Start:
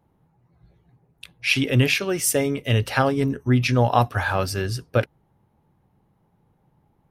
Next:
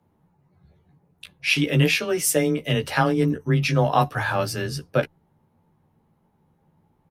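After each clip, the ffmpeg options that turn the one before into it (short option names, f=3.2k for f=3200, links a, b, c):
-filter_complex "[0:a]asplit=2[a][b];[b]adelay=14,volume=-5dB[c];[a][c]amix=inputs=2:normalize=0,afreqshift=18,volume=-1.5dB"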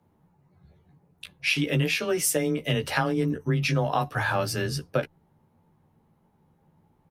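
-af "acompressor=threshold=-21dB:ratio=5"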